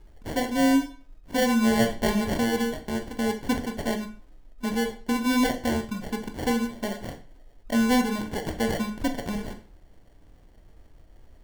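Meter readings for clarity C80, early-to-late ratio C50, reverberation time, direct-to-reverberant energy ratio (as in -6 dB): 15.5 dB, 11.5 dB, 0.40 s, 5.0 dB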